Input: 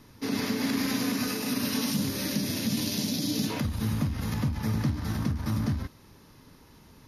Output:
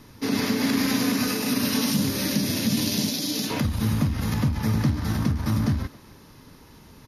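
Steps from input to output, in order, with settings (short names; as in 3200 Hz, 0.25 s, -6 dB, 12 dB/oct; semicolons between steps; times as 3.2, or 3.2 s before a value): 3.09–3.51 HPF 420 Hz 6 dB/oct; speakerphone echo 0.27 s, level -19 dB; gain +5 dB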